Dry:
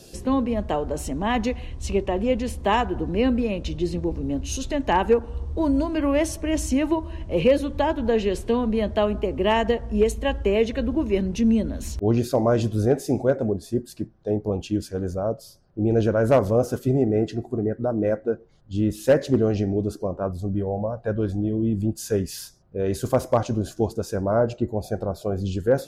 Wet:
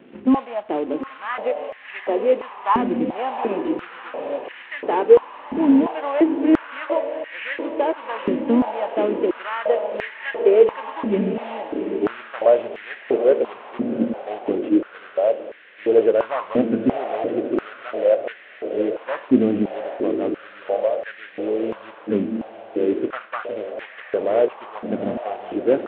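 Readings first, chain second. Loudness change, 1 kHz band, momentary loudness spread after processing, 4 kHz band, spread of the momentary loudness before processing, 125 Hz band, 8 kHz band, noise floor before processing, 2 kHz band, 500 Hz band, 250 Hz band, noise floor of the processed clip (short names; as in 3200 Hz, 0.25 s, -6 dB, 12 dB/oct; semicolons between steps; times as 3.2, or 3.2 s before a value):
+2.0 dB, +2.0 dB, 12 LU, -5.0 dB, 8 LU, -13.5 dB, under -35 dB, -48 dBFS, +2.5 dB, +3.0 dB, +1.5 dB, -43 dBFS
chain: CVSD 16 kbps; diffused feedback echo 0.76 s, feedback 61%, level -7.5 dB; stepped high-pass 2.9 Hz 240–1800 Hz; gain -2 dB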